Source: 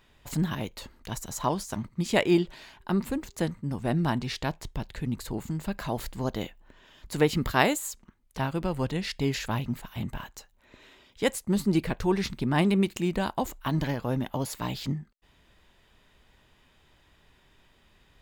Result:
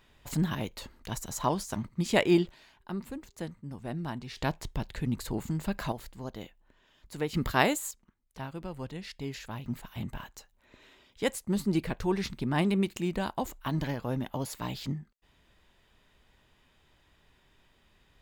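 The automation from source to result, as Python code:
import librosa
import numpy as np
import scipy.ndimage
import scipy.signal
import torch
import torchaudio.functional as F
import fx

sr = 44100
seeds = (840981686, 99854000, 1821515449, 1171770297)

y = fx.gain(x, sr, db=fx.steps((0.0, -1.0), (2.49, -9.5), (4.37, 0.0), (5.92, -9.5), (7.34, -2.0), (7.91, -10.0), (9.66, -3.5)))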